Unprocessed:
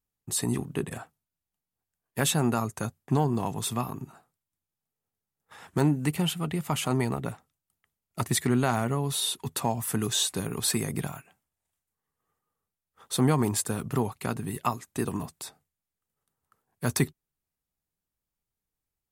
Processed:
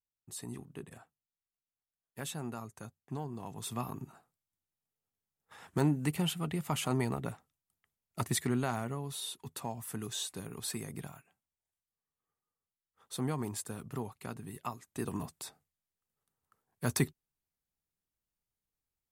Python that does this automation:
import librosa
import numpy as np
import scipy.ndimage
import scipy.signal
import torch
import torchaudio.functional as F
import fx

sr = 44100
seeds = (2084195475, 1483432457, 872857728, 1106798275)

y = fx.gain(x, sr, db=fx.line((3.37, -15.0), (3.91, -5.0), (8.22, -5.0), (9.14, -11.5), (14.76, -11.5), (15.22, -4.5)))